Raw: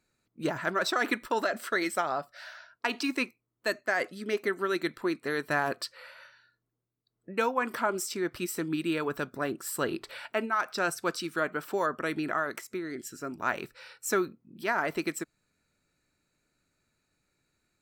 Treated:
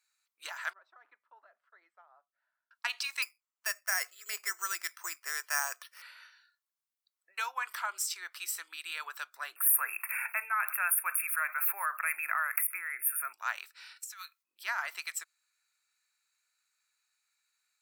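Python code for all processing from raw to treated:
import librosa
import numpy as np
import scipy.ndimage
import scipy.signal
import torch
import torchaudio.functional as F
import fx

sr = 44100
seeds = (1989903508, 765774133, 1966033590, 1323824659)

y = fx.chain(x, sr, fx.ladder_bandpass(hz=330.0, resonance_pct=30),
    fx.band_widen(depth_pct=40), at=(0.73, 2.71))
y = fx.chain(y, sr, fx.low_shelf(hz=450.0, db=8.5),
    fx.resample_bad(factor=6, down='filtered', up='hold'), at=(3.22, 6.02))
y = fx.chain(y, sr, fx.brickwall_bandstop(low_hz=2700.0, high_hz=9000.0),
    fx.tilt_eq(slope=3.5),
    fx.env_flatten(amount_pct=50), at=(9.56, 13.33))
y = fx.chain(y, sr, fx.bessel_highpass(hz=1800.0, order=2),
    fx.over_compress(threshold_db=-44.0, ratio=-1.0), at=(13.96, 14.43))
y = scipy.signal.sosfilt(scipy.signal.butter(4, 940.0, 'highpass', fs=sr, output='sos'), y)
y = fx.high_shelf(y, sr, hz=2300.0, db=8.5)
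y = y * librosa.db_to_amplitude(-6.0)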